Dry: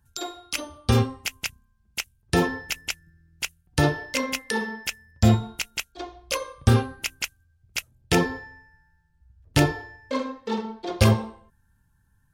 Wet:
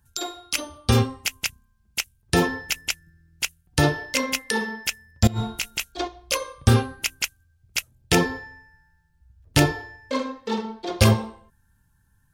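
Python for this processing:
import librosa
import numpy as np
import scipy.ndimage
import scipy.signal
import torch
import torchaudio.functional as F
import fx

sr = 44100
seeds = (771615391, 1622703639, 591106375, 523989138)

y = fx.high_shelf(x, sr, hz=2800.0, db=4.0)
y = fx.over_compress(y, sr, threshold_db=-28.0, ratio=-1.0, at=(5.27, 6.08))
y = F.gain(torch.from_numpy(y), 1.0).numpy()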